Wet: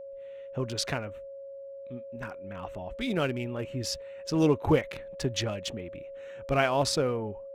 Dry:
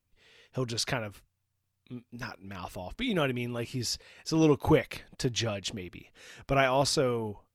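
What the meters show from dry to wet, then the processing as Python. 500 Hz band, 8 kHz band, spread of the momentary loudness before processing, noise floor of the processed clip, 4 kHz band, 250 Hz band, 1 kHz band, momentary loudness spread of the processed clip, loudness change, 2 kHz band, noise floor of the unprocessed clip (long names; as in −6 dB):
+0.5 dB, −1.5 dB, 18 LU, −43 dBFS, −1.0 dB, 0.0 dB, −0.5 dB, 18 LU, −1.0 dB, −1.0 dB, −80 dBFS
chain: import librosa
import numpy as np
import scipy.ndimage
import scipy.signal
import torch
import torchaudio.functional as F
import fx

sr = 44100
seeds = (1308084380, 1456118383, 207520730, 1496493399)

y = fx.wiener(x, sr, points=9)
y = y + 10.0 ** (-40.0 / 20.0) * np.sin(2.0 * np.pi * 550.0 * np.arange(len(y)) / sr)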